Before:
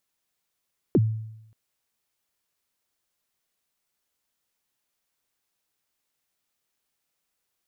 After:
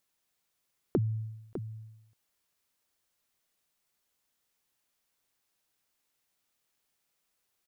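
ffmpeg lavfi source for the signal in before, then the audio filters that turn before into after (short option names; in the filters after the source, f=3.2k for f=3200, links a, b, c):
-f lavfi -i "aevalsrc='0.211*pow(10,-3*t/0.84)*sin(2*PI*(450*0.041/log(110/450)*(exp(log(110/450)*min(t,0.041)/0.041)-1)+110*max(t-0.041,0)))':d=0.58:s=44100"
-filter_complex "[0:a]acompressor=threshold=-27dB:ratio=4,asplit=2[a][b];[b]aecho=0:1:603:0.316[c];[a][c]amix=inputs=2:normalize=0"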